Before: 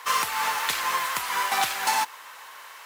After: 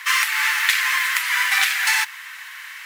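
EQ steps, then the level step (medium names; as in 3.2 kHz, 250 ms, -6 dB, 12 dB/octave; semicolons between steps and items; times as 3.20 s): resonant high-pass 1.9 kHz, resonance Q 2.8; +4.5 dB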